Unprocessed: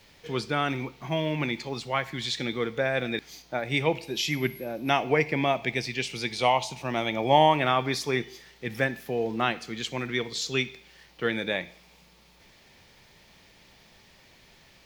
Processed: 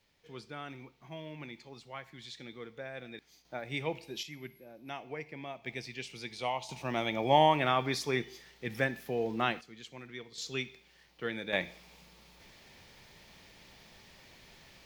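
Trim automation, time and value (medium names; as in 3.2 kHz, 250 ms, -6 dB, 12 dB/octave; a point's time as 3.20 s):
-16.5 dB
from 3.45 s -10 dB
from 4.23 s -18 dB
from 5.66 s -11.5 dB
from 6.69 s -4.5 dB
from 9.61 s -16 dB
from 10.38 s -9 dB
from 11.53 s -0.5 dB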